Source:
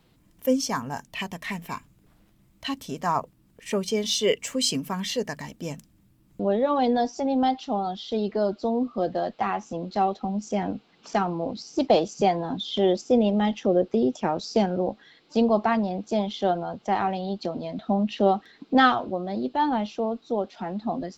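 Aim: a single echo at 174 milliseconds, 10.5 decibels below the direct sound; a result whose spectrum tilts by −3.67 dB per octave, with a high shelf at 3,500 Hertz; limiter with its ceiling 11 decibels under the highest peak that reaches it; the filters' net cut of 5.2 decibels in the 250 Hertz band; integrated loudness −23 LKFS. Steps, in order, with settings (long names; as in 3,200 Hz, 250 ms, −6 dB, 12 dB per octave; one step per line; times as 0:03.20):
parametric band 250 Hz −6.5 dB
high-shelf EQ 3,500 Hz +5 dB
brickwall limiter −16.5 dBFS
single-tap delay 174 ms −10.5 dB
level +6 dB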